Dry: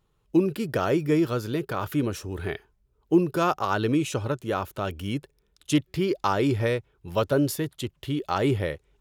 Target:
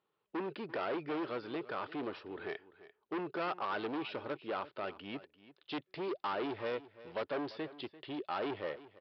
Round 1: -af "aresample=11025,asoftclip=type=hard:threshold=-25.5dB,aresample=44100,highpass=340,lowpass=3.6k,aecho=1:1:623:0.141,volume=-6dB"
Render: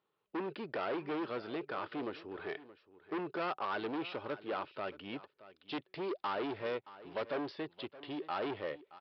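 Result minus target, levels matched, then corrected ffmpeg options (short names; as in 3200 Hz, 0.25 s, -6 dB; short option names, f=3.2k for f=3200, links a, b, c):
echo 0.28 s late
-af "aresample=11025,asoftclip=type=hard:threshold=-25.5dB,aresample=44100,highpass=340,lowpass=3.6k,aecho=1:1:343:0.141,volume=-6dB"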